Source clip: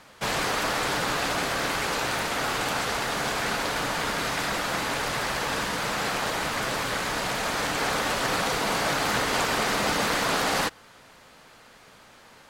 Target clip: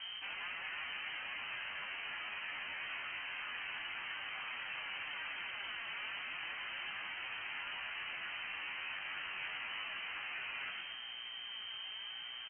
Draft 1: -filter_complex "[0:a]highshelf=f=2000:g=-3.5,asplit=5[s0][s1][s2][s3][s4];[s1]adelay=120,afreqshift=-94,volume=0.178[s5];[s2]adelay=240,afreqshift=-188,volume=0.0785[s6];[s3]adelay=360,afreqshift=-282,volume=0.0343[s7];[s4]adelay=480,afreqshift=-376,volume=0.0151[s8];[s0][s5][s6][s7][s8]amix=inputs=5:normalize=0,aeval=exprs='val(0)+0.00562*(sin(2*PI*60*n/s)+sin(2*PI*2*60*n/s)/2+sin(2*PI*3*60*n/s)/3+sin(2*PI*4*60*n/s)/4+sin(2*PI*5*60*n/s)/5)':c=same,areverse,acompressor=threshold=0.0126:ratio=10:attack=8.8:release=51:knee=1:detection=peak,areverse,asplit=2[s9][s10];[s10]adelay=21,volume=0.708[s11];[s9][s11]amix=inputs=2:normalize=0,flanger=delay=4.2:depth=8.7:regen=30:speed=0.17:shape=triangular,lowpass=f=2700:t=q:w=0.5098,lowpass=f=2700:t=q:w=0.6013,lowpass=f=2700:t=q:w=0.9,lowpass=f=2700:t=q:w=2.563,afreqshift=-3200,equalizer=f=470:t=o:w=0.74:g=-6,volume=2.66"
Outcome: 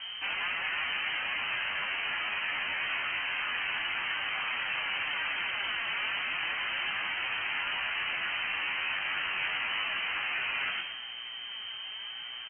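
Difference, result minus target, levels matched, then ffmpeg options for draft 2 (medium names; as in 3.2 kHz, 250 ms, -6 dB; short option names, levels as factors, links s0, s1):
compression: peak gain reduction -10.5 dB
-filter_complex "[0:a]highshelf=f=2000:g=-3.5,asplit=5[s0][s1][s2][s3][s4];[s1]adelay=120,afreqshift=-94,volume=0.178[s5];[s2]adelay=240,afreqshift=-188,volume=0.0785[s6];[s3]adelay=360,afreqshift=-282,volume=0.0343[s7];[s4]adelay=480,afreqshift=-376,volume=0.0151[s8];[s0][s5][s6][s7][s8]amix=inputs=5:normalize=0,aeval=exprs='val(0)+0.00562*(sin(2*PI*60*n/s)+sin(2*PI*2*60*n/s)/2+sin(2*PI*3*60*n/s)/3+sin(2*PI*4*60*n/s)/4+sin(2*PI*5*60*n/s)/5)':c=same,areverse,acompressor=threshold=0.00335:ratio=10:attack=8.8:release=51:knee=1:detection=peak,areverse,asplit=2[s9][s10];[s10]adelay=21,volume=0.708[s11];[s9][s11]amix=inputs=2:normalize=0,flanger=delay=4.2:depth=8.7:regen=30:speed=0.17:shape=triangular,lowpass=f=2700:t=q:w=0.5098,lowpass=f=2700:t=q:w=0.6013,lowpass=f=2700:t=q:w=0.9,lowpass=f=2700:t=q:w=2.563,afreqshift=-3200,equalizer=f=470:t=o:w=0.74:g=-6,volume=2.66"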